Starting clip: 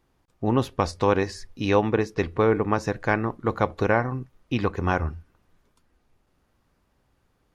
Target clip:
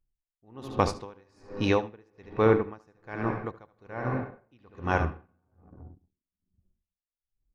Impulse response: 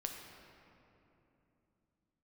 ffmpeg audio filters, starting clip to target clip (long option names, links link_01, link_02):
-filter_complex "[0:a]asplit=2[link_01][link_02];[1:a]atrim=start_sample=2205,adelay=74[link_03];[link_02][link_03]afir=irnorm=-1:irlink=0,volume=-6.5dB[link_04];[link_01][link_04]amix=inputs=2:normalize=0,anlmdn=0.251,aeval=exprs='val(0)*pow(10,-36*(0.5-0.5*cos(2*PI*1.2*n/s))/20)':channel_layout=same"